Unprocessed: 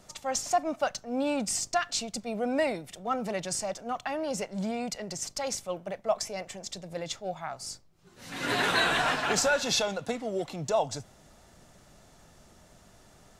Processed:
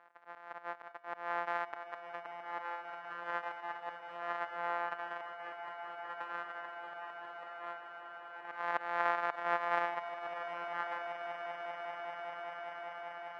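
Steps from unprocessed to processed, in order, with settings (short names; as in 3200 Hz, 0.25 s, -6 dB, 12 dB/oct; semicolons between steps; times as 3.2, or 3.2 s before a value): sample sorter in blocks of 256 samples; Chebyshev band-pass 740–1700 Hz, order 2; auto swell 0.261 s; swelling echo 0.196 s, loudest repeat 8, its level -13.5 dB; gain +3.5 dB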